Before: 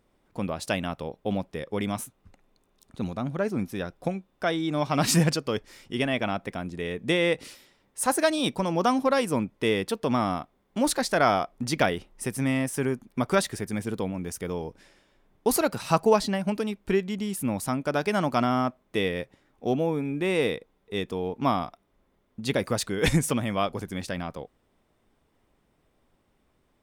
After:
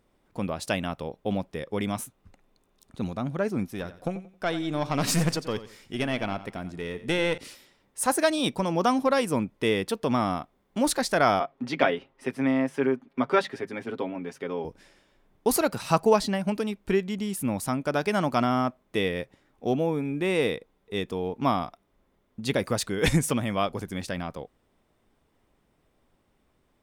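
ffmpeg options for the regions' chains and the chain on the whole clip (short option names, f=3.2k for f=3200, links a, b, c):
-filter_complex "[0:a]asettb=1/sr,asplit=3[a][b][c];[a]atrim=end=3.664[d];[b]atrim=start=3.66:end=7.38,asetpts=PTS-STARTPTS,afade=t=in:d=0.004:c=qsin,afade=t=out:st=3.716:d=0.004:c=qsin,aeval=exprs='(tanh(5.62*val(0)+0.5)-tanh(0.5))/5.62':c=same,aecho=1:1:89|178|267:0.2|0.0559|0.0156,atrim=end_sample=164052[e];[c]atrim=start=7.376[f];[d][e]acrossfade=d=0.004:c1=hsin:c2=qsin[g];[g][f]acrossfade=d=0.004:c1=qsin:c2=hsin,asettb=1/sr,asplit=3[h][i][j];[h]atrim=end=11.404[k];[i]atrim=start=11.4:end=14.65,asetpts=PTS-STARTPTS,afade=t=in:d=0.004:c=qsin,afade=t=out:st=3.246:d=0.004:c=qsin,acrossover=split=190 4000:gain=0.0891 1 0.0708[l][m][n];[l][m][n]amix=inputs=3:normalize=0,bandreject=f=50:t=h:w=6,bandreject=f=100:t=h:w=6,bandreject=f=150:t=h:w=6,bandreject=f=200:t=h:w=6,aecho=1:1:7.4:0.67,atrim=end_sample=143325[o];[j]atrim=start=14.646[p];[k][o]acrossfade=d=0.004:c1=hsin:c2=qsin[q];[q][p]acrossfade=d=0.004:c1=qsin:c2=hsin"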